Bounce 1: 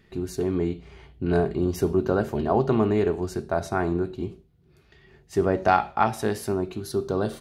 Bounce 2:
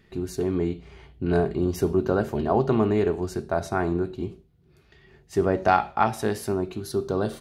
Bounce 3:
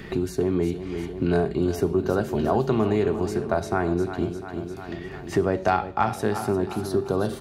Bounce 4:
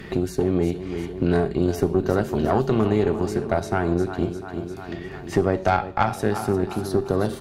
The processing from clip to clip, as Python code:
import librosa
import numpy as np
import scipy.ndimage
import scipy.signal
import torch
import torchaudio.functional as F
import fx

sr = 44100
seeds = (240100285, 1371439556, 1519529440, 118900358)

y1 = x
y2 = fx.echo_feedback(y1, sr, ms=350, feedback_pct=43, wet_db=-13.0)
y2 = fx.band_squash(y2, sr, depth_pct=70)
y3 = fx.tube_stage(y2, sr, drive_db=12.0, bias=0.75)
y3 = F.gain(torch.from_numpy(y3), 5.5).numpy()